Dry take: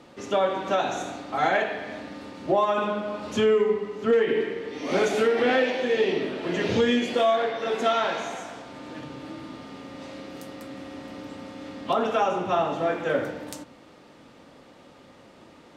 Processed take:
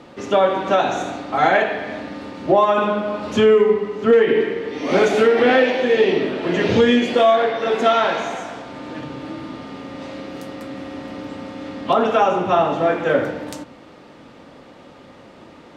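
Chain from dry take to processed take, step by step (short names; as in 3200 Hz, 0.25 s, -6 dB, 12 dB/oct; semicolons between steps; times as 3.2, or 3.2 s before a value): high shelf 6000 Hz -9 dB; gain +7.5 dB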